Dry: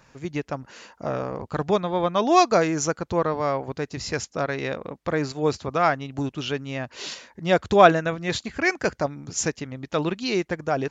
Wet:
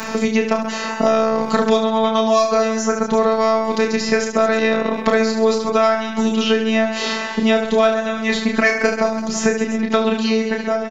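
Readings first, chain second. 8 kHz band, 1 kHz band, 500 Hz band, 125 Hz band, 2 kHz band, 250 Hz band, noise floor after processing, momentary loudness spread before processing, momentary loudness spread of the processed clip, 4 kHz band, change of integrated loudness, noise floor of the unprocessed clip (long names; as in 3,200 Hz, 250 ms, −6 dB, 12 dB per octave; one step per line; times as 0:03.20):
+4.0 dB, +3.5 dB, +7.0 dB, −2.0 dB, +7.0 dB, +9.0 dB, −26 dBFS, 14 LU, 4 LU, +8.0 dB, +6.5 dB, −62 dBFS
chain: fade-out on the ending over 1.56 s
automatic gain control gain up to 9 dB
in parallel at −10 dB: soft clipping −9.5 dBFS, distortion −14 dB
on the sum: phases set to zero 222 Hz
on a send: reverse bouncing-ball delay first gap 30 ms, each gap 1.4×, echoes 5
on the sum: multiband upward and downward compressor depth 100%
level −1 dB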